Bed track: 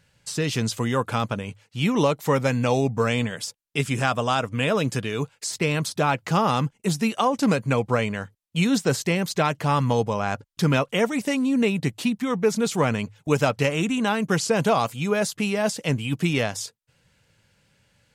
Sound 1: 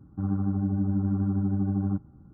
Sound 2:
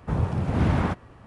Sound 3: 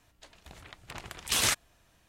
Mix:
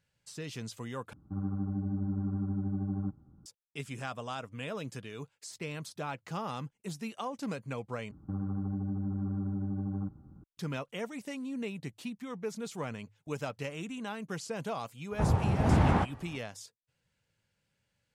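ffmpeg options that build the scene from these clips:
ffmpeg -i bed.wav -i cue0.wav -i cue1.wav -filter_complex "[1:a]asplit=2[link_01][link_02];[0:a]volume=-16dB[link_03];[link_02]acompressor=threshold=-28dB:ratio=6:attack=3.2:release=140:knee=1:detection=peak[link_04];[2:a]equalizer=frequency=810:width=3.8:gain=6[link_05];[link_03]asplit=3[link_06][link_07][link_08];[link_06]atrim=end=1.134[link_09];[link_01]atrim=end=2.33,asetpts=PTS-STARTPTS,volume=-7dB[link_10];[link_07]atrim=start=3.456:end=8.114[link_11];[link_04]atrim=end=2.33,asetpts=PTS-STARTPTS,volume=-2dB[link_12];[link_08]atrim=start=10.436[link_13];[link_05]atrim=end=1.26,asetpts=PTS-STARTPTS,volume=-2.5dB,afade=type=in:duration=0.004:curve=hsin,afade=type=out:start_time=1.256:duration=0.004:curve=hsin,adelay=15110[link_14];[link_09][link_10]acrossfade=duration=0.004:curve1=hsin:curve2=hsin[link_15];[link_15][link_11]acrossfade=duration=0.004:curve1=hsin:curve2=hsin[link_16];[link_16][link_12]acrossfade=duration=0.004:curve1=hsin:curve2=hsin[link_17];[link_17][link_13]acrossfade=duration=0.004:curve1=hsin:curve2=hsin[link_18];[link_18][link_14]amix=inputs=2:normalize=0" out.wav

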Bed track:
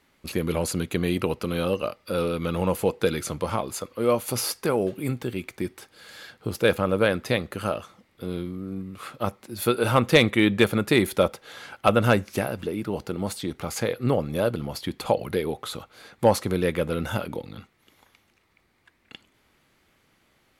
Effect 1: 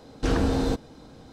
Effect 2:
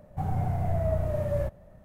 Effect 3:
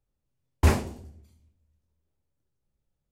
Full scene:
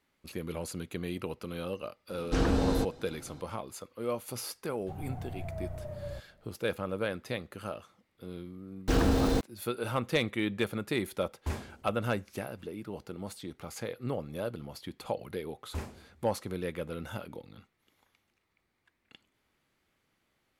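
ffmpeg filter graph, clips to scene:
ffmpeg -i bed.wav -i cue0.wav -i cue1.wav -i cue2.wav -filter_complex "[1:a]asplit=2[link_01][link_02];[3:a]asplit=2[link_03][link_04];[0:a]volume=-11.5dB[link_05];[link_02]aeval=exprs='val(0)*gte(abs(val(0)),0.0237)':channel_layout=same[link_06];[link_01]atrim=end=1.32,asetpts=PTS-STARTPTS,volume=-3.5dB,afade=type=in:duration=0.004:curve=hsin,afade=type=out:start_time=1.316:duration=0.004:curve=hsin,adelay=2090[link_07];[2:a]atrim=end=1.84,asetpts=PTS-STARTPTS,volume=-12dB,afade=type=in:duration=0.004:curve=hsin,afade=type=out:start_time=1.836:duration=0.004:curve=hsin,adelay=4710[link_08];[link_06]atrim=end=1.32,asetpts=PTS-STARTPTS,volume=-2dB,afade=type=in:duration=0.004:curve=hsin,afade=type=out:start_time=1.316:duration=0.004:curve=hsin,adelay=8650[link_09];[link_03]atrim=end=3.11,asetpts=PTS-STARTPTS,volume=-14.5dB,afade=type=in:duration=0.004:curve=hsin,afade=type=out:start_time=3.106:duration=0.004:curve=hsin,adelay=10830[link_10];[link_04]atrim=end=3.11,asetpts=PTS-STARTPTS,volume=-17.5dB,afade=type=in:duration=0.004:curve=hsin,afade=type=out:start_time=3.106:duration=0.004:curve=hsin,adelay=15110[link_11];[link_05][link_07][link_08][link_09][link_10][link_11]amix=inputs=6:normalize=0" out.wav

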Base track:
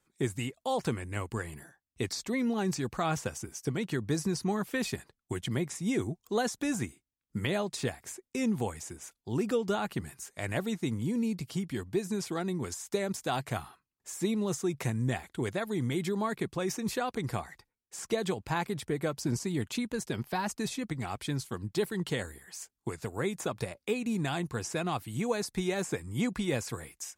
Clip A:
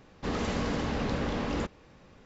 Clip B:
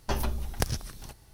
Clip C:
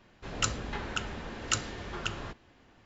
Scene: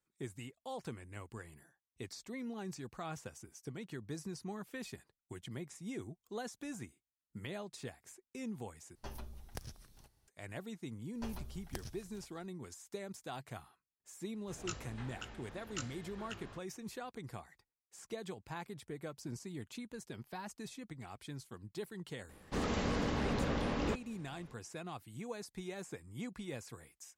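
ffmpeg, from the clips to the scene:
ffmpeg -i bed.wav -i cue0.wav -i cue1.wav -i cue2.wav -filter_complex "[2:a]asplit=2[link_01][link_02];[0:a]volume=-13dB[link_03];[3:a]flanger=delay=16.5:depth=4.1:speed=2.9[link_04];[link_03]asplit=2[link_05][link_06];[link_05]atrim=end=8.954[link_07];[link_01]atrim=end=1.33,asetpts=PTS-STARTPTS,volume=-17.5dB[link_08];[link_06]atrim=start=10.276[link_09];[link_02]atrim=end=1.33,asetpts=PTS-STARTPTS,volume=-16.5dB,afade=type=in:duration=0.004:curve=hsin,afade=type=out:start_time=1.326:duration=0.004:curve=hsin,adelay=11130[link_10];[link_04]atrim=end=2.85,asetpts=PTS-STARTPTS,volume=-10.5dB,afade=type=in:duration=0.004:curve=hsin,afade=type=out:start_time=2.846:duration=0.004:curve=hsin,adelay=14250[link_11];[1:a]atrim=end=2.25,asetpts=PTS-STARTPTS,volume=-4dB,afade=type=in:duration=0.004:curve=hsin,afade=type=out:start_time=2.246:duration=0.004:curve=hsin,adelay=22290[link_12];[link_07][link_08]acrossfade=duration=0.004:curve1=hsin:curve2=hsin[link_13];[link_13][link_09]acrossfade=duration=0.004:curve1=hsin:curve2=hsin[link_14];[link_14][link_10][link_11][link_12]amix=inputs=4:normalize=0" out.wav

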